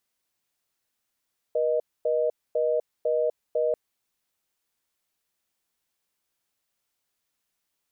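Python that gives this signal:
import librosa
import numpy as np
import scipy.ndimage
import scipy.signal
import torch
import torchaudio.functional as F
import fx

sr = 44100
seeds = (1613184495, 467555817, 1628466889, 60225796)

y = fx.call_progress(sr, length_s=2.19, kind='reorder tone', level_db=-24.0)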